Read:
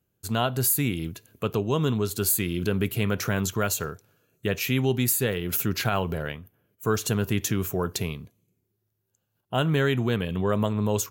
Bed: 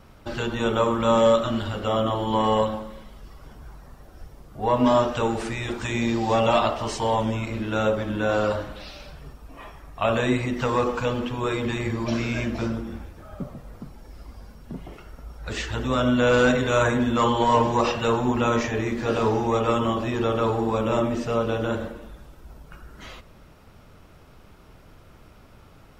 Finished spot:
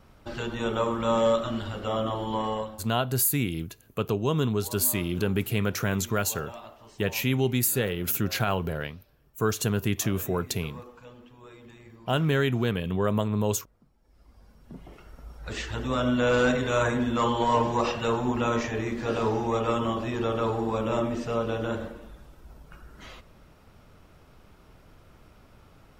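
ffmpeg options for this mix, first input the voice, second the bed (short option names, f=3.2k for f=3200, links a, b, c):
-filter_complex "[0:a]adelay=2550,volume=-1dB[a];[1:a]volume=14dB,afade=t=out:st=2.24:d=0.68:silence=0.125893,afade=t=in:st=14:d=1.28:silence=0.112202[b];[a][b]amix=inputs=2:normalize=0"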